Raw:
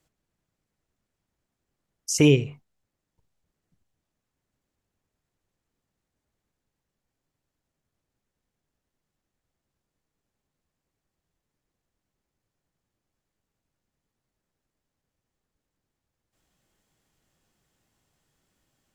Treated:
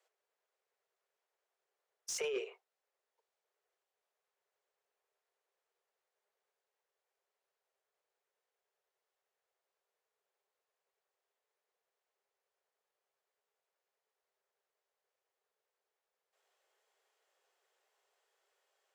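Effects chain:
Butterworth high-pass 390 Hz 96 dB per octave
compressor whose output falls as the input rises −27 dBFS, ratio −1
soft clipping −23.5 dBFS, distortion −11 dB
high-shelf EQ 4,700 Hz −9.5 dB
level −5 dB

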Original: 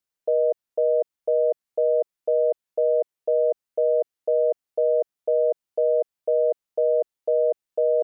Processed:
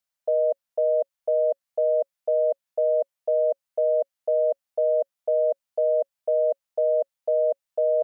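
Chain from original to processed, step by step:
drawn EQ curve 250 Hz 0 dB, 360 Hz −15 dB, 550 Hz +4 dB
level −3 dB

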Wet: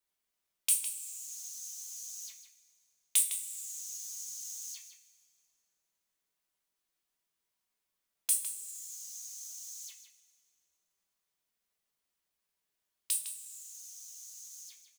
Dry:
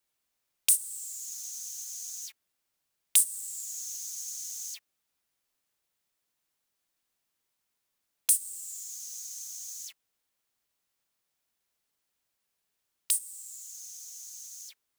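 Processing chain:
slap from a distant wall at 27 metres, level −8 dB
coupled-rooms reverb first 0.28 s, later 2.1 s, from −18 dB, DRR 2 dB
level −6.5 dB

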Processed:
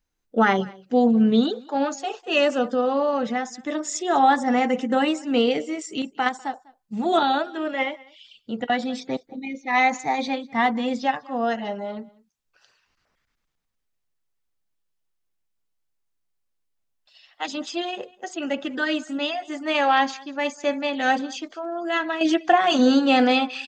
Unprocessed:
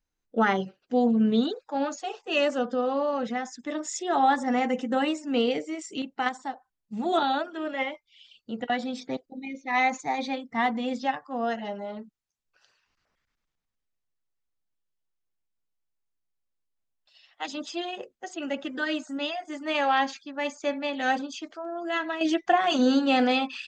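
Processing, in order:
single-tap delay 198 ms −23.5 dB
level +4.5 dB

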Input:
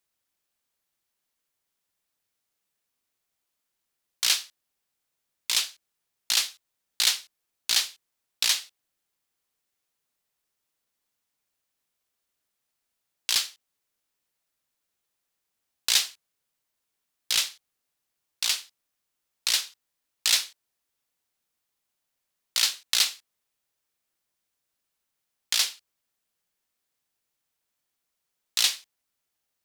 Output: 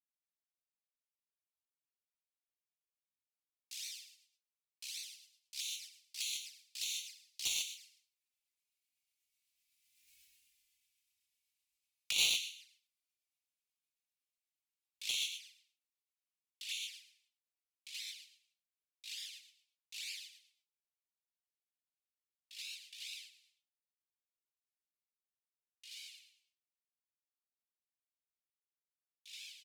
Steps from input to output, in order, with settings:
source passing by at 0:10.10, 42 m/s, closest 4.5 metres
high shelf with overshoot 1,700 Hz +11.5 dB, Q 3
repeating echo 105 ms, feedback 32%, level −8 dB
rotating-speaker cabinet horn 8 Hz, later 0.6 Hz, at 0:22.60
guitar amp tone stack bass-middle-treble 6-0-2
reverb whose tail is shaped and stops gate 170 ms flat, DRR −6 dB
in parallel at −10 dB: bit reduction 7 bits
on the sum: flanger swept by the level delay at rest 3.6 ms, full sweep at −53.5 dBFS
level +17.5 dB

